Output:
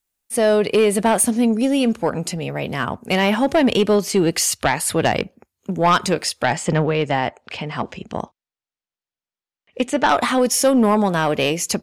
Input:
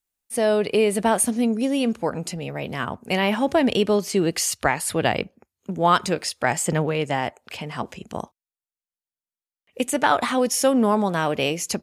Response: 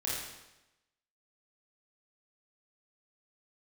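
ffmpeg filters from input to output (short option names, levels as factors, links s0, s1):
-filter_complex "[0:a]aeval=exprs='0.562*sin(PI/2*1.78*val(0)/0.562)':c=same,asettb=1/sr,asplit=3[s0][s1][s2];[s0]atrim=end=6.464[s3];[s1]atrim=start=6.46:end=10.09,asetpts=PTS-STARTPTS,afade=t=in:d=0.004:c=qsin,afade=t=out:st=3.626:d=0.004:c=qsin,lowpass=5100[s4];[s2]atrim=start=10.086[s5];[s3][s4]acrossfade=d=0.004:c1=hsin:c2=qsin[s6];[s6][s5]acrossfade=d=0.004:c1=qsin:c2=hsin,volume=0.631"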